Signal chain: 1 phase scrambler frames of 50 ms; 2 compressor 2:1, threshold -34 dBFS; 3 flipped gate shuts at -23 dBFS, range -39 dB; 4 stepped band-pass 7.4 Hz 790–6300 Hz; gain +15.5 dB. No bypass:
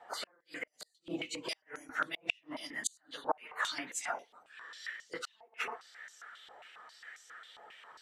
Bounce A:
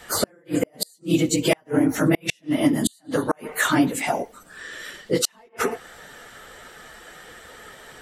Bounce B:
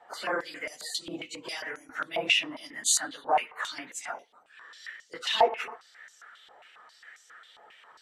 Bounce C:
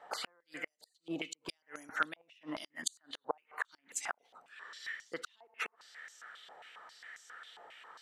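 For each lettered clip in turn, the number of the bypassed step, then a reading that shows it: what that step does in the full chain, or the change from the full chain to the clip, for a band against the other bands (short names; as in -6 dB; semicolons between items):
4, 125 Hz band +18.5 dB; 3, crest factor change -6.0 dB; 1, 125 Hz band +2.0 dB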